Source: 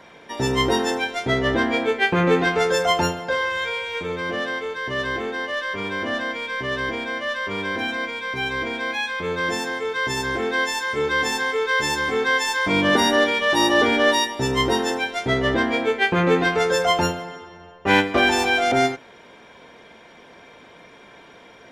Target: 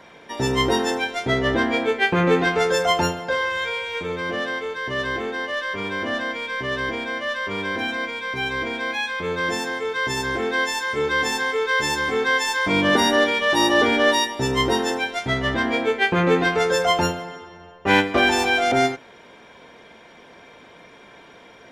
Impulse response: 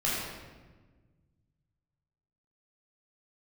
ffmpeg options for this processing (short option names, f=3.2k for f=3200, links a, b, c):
-filter_complex "[0:a]asettb=1/sr,asplit=3[a][b][c];[a]atrim=end=15.194[d];[b]atrim=start=15.19:end=15.65,asetpts=PTS-STARTPTS,afade=t=in:d=0.004:c=qsin,afade=t=out:st=0.456:d=0.004:c=qsin,equalizer=f=420:w=1.5:g=-7.5[e];[c]atrim=start=15.646[f];[d][e]acrossfade=d=0.004:c1=hsin:c2=qsin[g];[g][f]acrossfade=d=0.004:c1=qsin:c2=hsin"